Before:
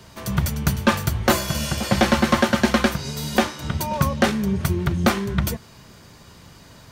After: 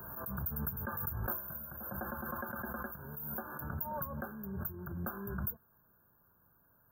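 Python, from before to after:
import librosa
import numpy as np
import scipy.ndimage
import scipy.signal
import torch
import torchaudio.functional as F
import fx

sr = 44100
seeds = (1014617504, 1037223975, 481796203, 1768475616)

y = fx.brickwall_bandstop(x, sr, low_hz=1700.0, high_hz=13000.0)
y = librosa.effects.preemphasis(y, coef=0.9, zi=[0.0])
y = fx.pre_swell(y, sr, db_per_s=30.0)
y = y * 10.0 ** (-7.0 / 20.0)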